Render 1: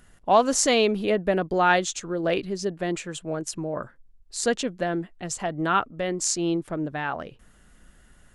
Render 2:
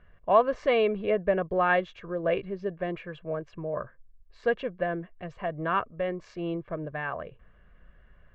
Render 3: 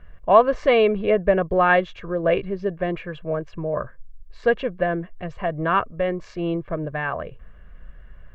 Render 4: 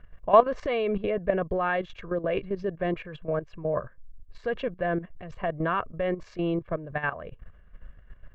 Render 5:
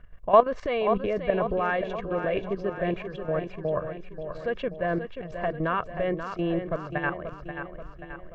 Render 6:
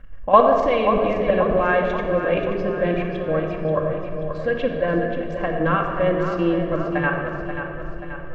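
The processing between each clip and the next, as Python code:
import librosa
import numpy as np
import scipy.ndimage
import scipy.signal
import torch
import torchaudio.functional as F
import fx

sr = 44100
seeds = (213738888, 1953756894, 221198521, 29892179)

y1 = scipy.signal.sosfilt(scipy.signal.butter(4, 2500.0, 'lowpass', fs=sr, output='sos'), x)
y1 = y1 + 0.58 * np.pad(y1, (int(1.8 * sr / 1000.0), 0))[:len(y1)]
y1 = y1 * librosa.db_to_amplitude(-4.0)
y2 = fx.low_shelf(y1, sr, hz=68.0, db=9.0)
y2 = y2 * librosa.db_to_amplitude(6.5)
y3 = fx.level_steps(y2, sr, step_db=13)
y4 = fx.echo_feedback(y3, sr, ms=533, feedback_pct=53, wet_db=-8.5)
y5 = fx.room_shoebox(y4, sr, seeds[0], volume_m3=3600.0, walls='mixed', distance_m=2.2)
y5 = y5 * librosa.db_to_amplitude(4.0)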